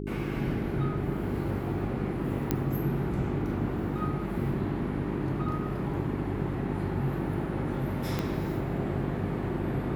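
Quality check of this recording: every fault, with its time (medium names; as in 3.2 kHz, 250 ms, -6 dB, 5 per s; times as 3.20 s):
hum 50 Hz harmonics 8 -35 dBFS
2.51 s: pop -12 dBFS
8.19 s: pop -15 dBFS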